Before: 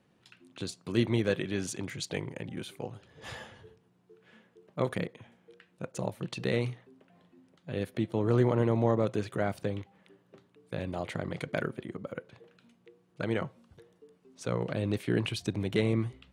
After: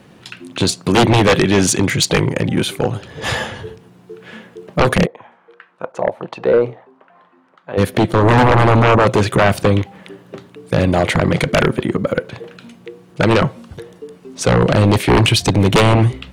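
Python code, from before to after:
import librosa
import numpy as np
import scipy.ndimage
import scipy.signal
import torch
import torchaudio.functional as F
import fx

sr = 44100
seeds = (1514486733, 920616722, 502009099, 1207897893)

y = fx.auto_wah(x, sr, base_hz=520.0, top_hz=1200.0, q=2.2, full_db=-26.5, direction='down', at=(5.05, 7.77), fade=0.02)
y = fx.fold_sine(y, sr, drive_db=13, ceiling_db=-12.5)
y = y * librosa.db_to_amplitude(6.0)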